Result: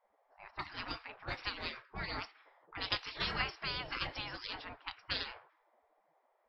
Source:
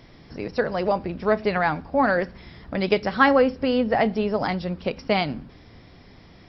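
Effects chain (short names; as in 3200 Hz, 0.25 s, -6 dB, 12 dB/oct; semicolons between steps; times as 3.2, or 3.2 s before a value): low-pass opened by the level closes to 320 Hz, open at -17 dBFS; spectral gate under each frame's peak -25 dB weak; gain +1 dB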